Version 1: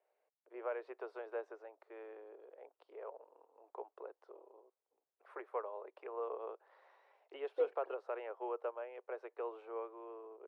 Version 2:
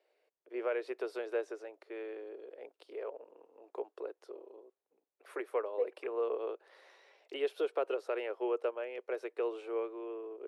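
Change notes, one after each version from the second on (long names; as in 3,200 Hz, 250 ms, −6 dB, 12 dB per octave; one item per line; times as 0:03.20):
first voice: remove resonant band-pass 910 Hz, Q 1.6
second voice: entry −1.80 s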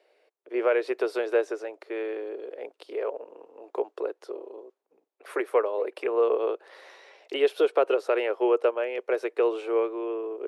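first voice +11.0 dB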